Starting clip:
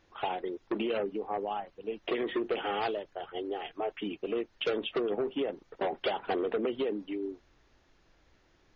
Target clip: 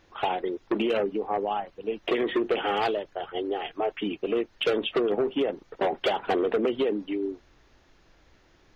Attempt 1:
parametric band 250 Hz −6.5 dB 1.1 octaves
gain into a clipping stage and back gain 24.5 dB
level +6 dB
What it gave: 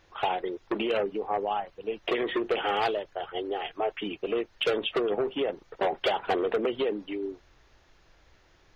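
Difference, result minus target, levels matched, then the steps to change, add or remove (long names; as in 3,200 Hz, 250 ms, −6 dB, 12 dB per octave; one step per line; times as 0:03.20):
250 Hz band −2.5 dB
remove: parametric band 250 Hz −6.5 dB 1.1 octaves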